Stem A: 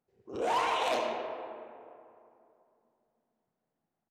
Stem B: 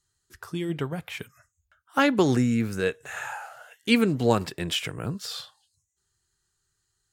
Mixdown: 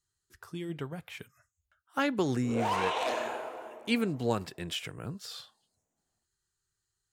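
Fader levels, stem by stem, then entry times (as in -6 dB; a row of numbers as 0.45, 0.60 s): -1.5, -8.0 dB; 2.15, 0.00 s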